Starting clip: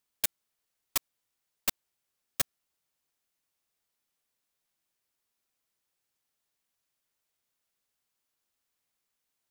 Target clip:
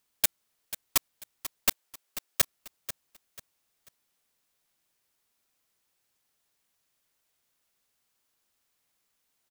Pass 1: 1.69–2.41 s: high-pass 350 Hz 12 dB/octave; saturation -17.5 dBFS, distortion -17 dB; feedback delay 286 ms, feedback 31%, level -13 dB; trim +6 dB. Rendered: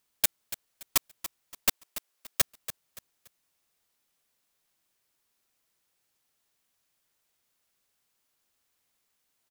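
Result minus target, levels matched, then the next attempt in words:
echo 204 ms early
1.69–2.41 s: high-pass 350 Hz 12 dB/octave; saturation -17.5 dBFS, distortion -17 dB; feedback delay 490 ms, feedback 31%, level -13 dB; trim +6 dB

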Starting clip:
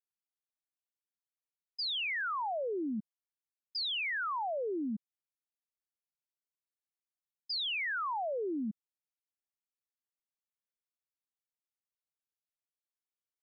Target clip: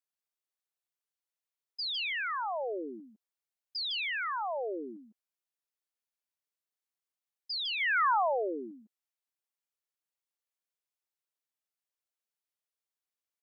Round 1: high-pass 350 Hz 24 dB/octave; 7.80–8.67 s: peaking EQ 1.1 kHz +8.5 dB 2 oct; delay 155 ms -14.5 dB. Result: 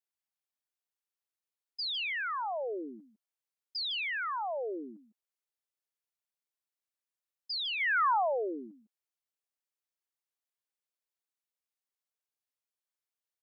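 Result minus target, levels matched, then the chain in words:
echo-to-direct -7 dB
high-pass 350 Hz 24 dB/octave; 7.80–8.67 s: peaking EQ 1.1 kHz +8.5 dB 2 oct; delay 155 ms -7.5 dB

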